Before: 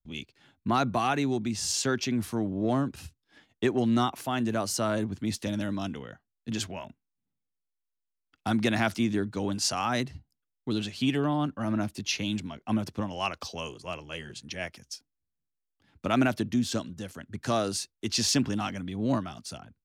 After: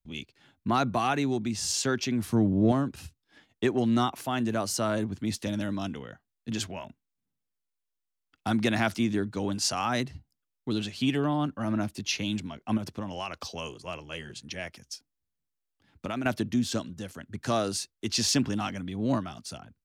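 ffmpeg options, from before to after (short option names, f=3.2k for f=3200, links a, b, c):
-filter_complex "[0:a]asettb=1/sr,asplit=3[a][b][c];[a]atrim=end=2.294[d];[b]atrim=start=2.29:end=2.72,asetpts=PTS-STARTPTS,afade=t=in:d=0.004:c=qsin,afade=t=out:st=0.426:d=0.004:c=qsin,equalizer=f=120:w=0.42:g=9[e];[c]atrim=start=2.716[f];[d][e]acrossfade=d=0.004:c1=hsin:c2=qsin[g];[g][f]acrossfade=d=0.004:c1=qsin:c2=hsin,asettb=1/sr,asplit=3[h][i][j];[h]atrim=end=12.774[k];[i]atrim=start=12.77:end=16.26,asetpts=PTS-STARTPTS,afade=t=in:d=0.004:c=qsin,afade=t=out:st=3.486:d=0.004:c=qsin,acompressor=threshold=-29dB:ratio=6:attack=3.2:release=140:knee=1:detection=peak[l];[j]atrim=start=16.256[m];[k][l]acrossfade=d=0.004:c1=hsin:c2=qsin[n];[n][m]acrossfade=d=0.004:c1=qsin:c2=hsin"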